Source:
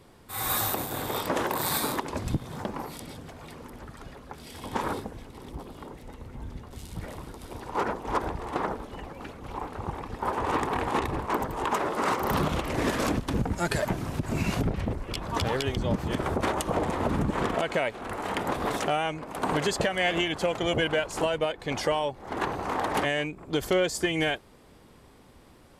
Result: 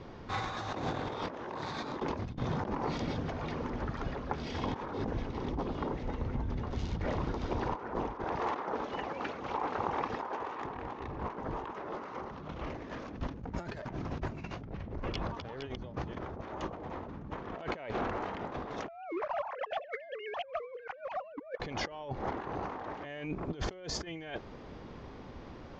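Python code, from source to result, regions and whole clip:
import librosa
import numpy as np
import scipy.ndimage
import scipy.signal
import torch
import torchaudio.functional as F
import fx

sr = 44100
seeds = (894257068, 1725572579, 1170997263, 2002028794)

y = fx.chain(x, sr, fx.highpass(hz=540.0, slope=6),
    fx.high_shelf(hz=12000.0, db=10.0), at=(8.24, 10.65))
y = fx.chain(y, sr, fx.sine_speech(),
    fx.leveller(passes=1), at=(18.88, 21.6))
y = scipy.signal.sosfilt(scipy.signal.butter(12, 6600.0, 'lowpass', fs=sr, output='sos'), y)
y = fx.high_shelf(y, sr, hz=3300.0, db=-11.0)
y = fx.over_compress(y, sr, threshold_db=-39.0, ratio=-1.0)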